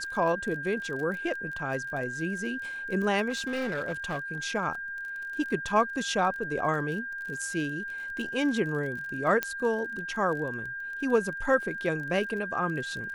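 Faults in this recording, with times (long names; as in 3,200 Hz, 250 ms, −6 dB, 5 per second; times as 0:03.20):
surface crackle 33 per second −36 dBFS
whistle 1,600 Hz −34 dBFS
0:03.29–0:04.18: clipping −27 dBFS
0:09.43: click −12 dBFS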